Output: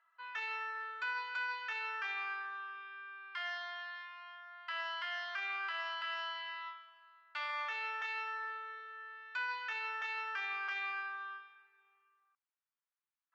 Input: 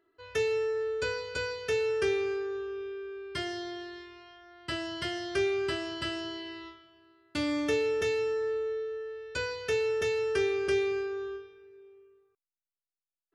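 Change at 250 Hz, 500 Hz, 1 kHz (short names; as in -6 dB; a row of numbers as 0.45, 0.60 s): under -40 dB, -28.0 dB, +2.5 dB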